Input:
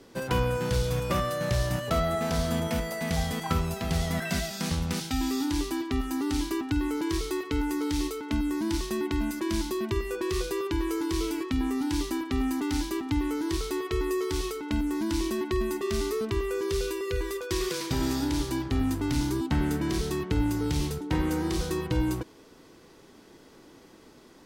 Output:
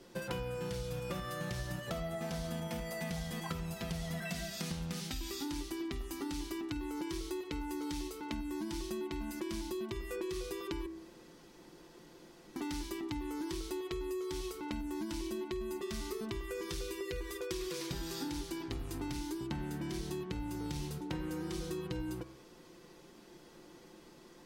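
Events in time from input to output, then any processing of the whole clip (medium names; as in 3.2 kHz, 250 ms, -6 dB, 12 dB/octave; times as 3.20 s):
10.86–12.56 s: room tone
whole clip: comb 5.7 ms, depth 54%; de-hum 65.44 Hz, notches 38; compression, threshold -32 dBFS; trim -4 dB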